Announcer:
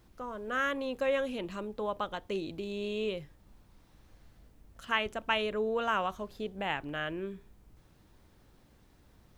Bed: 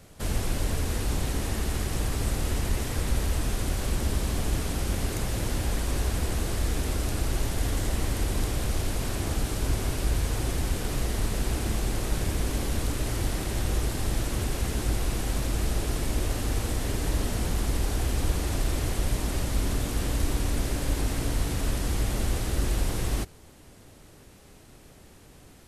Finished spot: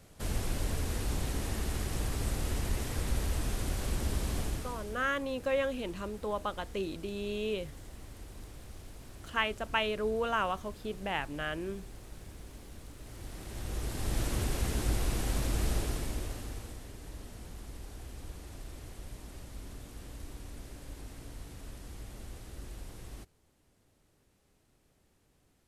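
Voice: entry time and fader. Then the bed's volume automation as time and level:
4.45 s, -0.5 dB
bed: 4.40 s -5.5 dB
5.11 s -20.5 dB
12.96 s -20.5 dB
14.22 s -3.5 dB
15.75 s -3.5 dB
16.91 s -18.5 dB

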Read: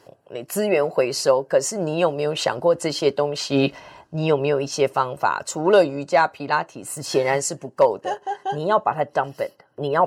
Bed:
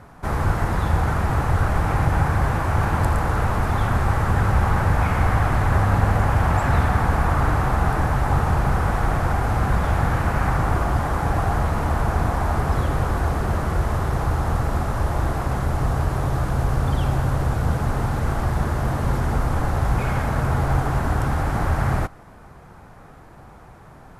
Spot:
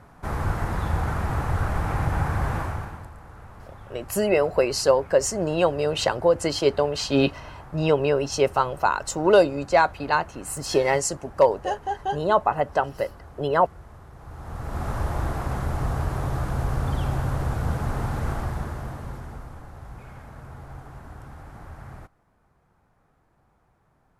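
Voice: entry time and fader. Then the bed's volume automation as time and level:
3.60 s, -1.0 dB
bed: 2.61 s -5 dB
3.11 s -23.5 dB
14.15 s -23.5 dB
14.88 s -4.5 dB
18.30 s -4.5 dB
19.65 s -20.5 dB

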